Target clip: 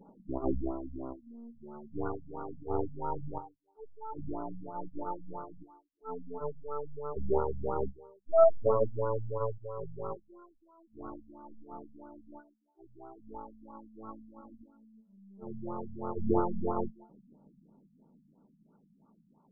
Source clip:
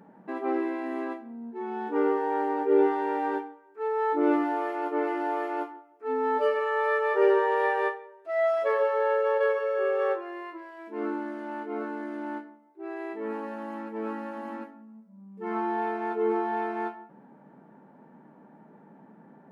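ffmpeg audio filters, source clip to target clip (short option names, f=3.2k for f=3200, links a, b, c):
-af "aphaser=in_gain=1:out_gain=1:delay=1.4:decay=0.67:speed=0.12:type=triangular,aeval=exprs='0.355*(cos(1*acos(clip(val(0)/0.355,-1,1)))-cos(1*PI/2))+0.0891*(cos(3*acos(clip(val(0)/0.355,-1,1)))-cos(3*PI/2))+0.0316*(cos(6*acos(clip(val(0)/0.355,-1,1)))-cos(6*PI/2))':c=same,afftfilt=real='re*lt(b*sr/1024,230*pow(1500/230,0.5+0.5*sin(2*PI*3*pts/sr)))':imag='im*lt(b*sr/1024,230*pow(1500/230,0.5+0.5*sin(2*PI*3*pts/sr)))':win_size=1024:overlap=0.75"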